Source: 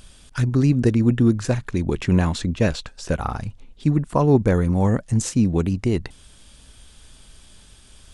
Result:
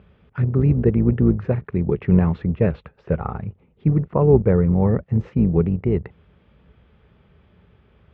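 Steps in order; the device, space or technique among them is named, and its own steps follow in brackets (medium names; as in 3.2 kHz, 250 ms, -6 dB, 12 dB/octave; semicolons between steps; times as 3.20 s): sub-octave bass pedal (octave divider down 2 oct, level -5 dB; cabinet simulation 62–2000 Hz, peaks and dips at 170 Hz +5 dB, 280 Hz -7 dB, 430 Hz +6 dB, 680 Hz -3 dB, 1 kHz -4 dB, 1.6 kHz -7 dB)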